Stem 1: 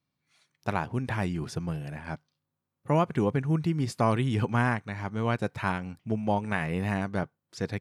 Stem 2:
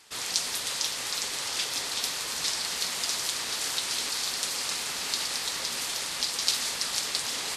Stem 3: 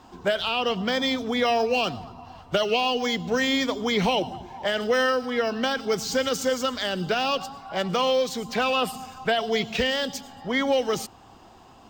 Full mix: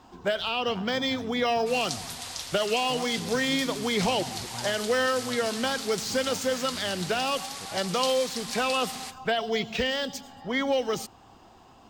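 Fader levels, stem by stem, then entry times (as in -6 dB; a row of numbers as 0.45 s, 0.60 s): -16.0 dB, -7.0 dB, -3.0 dB; 0.00 s, 1.55 s, 0.00 s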